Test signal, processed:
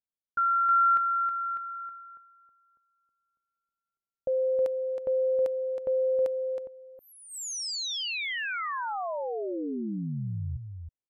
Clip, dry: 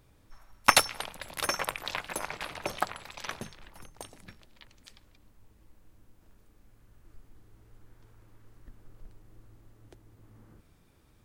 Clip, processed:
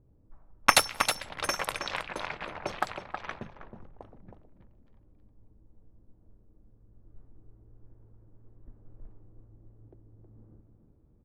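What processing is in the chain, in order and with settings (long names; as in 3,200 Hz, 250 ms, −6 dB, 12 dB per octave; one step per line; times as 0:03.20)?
single-tap delay 319 ms −7 dB
low-pass that shuts in the quiet parts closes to 420 Hz, open at −27 dBFS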